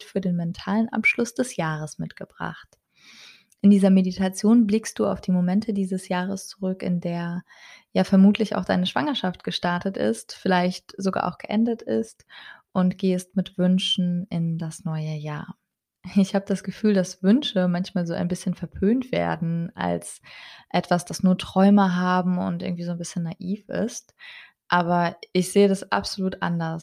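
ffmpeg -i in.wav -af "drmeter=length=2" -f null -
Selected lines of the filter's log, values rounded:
Channel 1: DR: 11.0
Overall DR: 11.0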